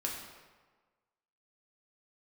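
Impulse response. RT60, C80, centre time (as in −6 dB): 1.4 s, 5.0 dB, 55 ms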